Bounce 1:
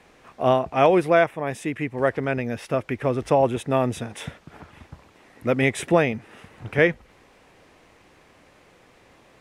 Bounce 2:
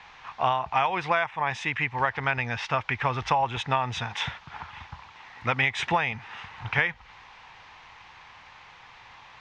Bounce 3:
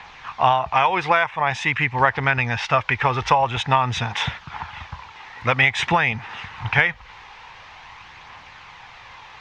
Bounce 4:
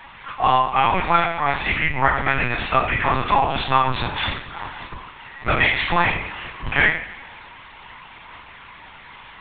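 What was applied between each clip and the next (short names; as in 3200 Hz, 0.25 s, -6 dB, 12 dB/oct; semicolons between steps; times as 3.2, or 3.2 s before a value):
EQ curve 120 Hz 0 dB, 300 Hz -13 dB, 610 Hz -7 dB, 880 Hz +12 dB, 1300 Hz +7 dB, 3600 Hz +9 dB, 6400 Hz +1 dB, 11000 Hz -30 dB; compressor 12:1, threshold -20 dBFS, peak gain reduction 12.5 dB
phaser 0.48 Hz, delay 2.5 ms, feedback 26%; gain +6.5 dB
two-slope reverb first 0.53 s, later 1.9 s, from -18 dB, DRR -5 dB; LPC vocoder at 8 kHz pitch kept; gain -5.5 dB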